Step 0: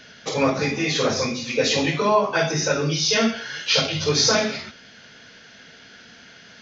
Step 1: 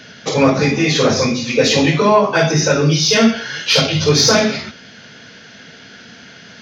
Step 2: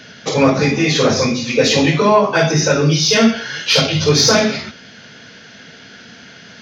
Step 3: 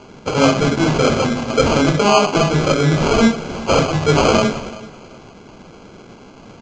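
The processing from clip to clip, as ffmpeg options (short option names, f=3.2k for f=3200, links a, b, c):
-af "acontrast=60,highpass=94,lowshelf=f=280:g=6.5"
-af anull
-af "acrusher=samples=24:mix=1:aa=0.000001,aecho=1:1:379|758:0.112|0.0303,aresample=16000,aresample=44100,volume=-1dB"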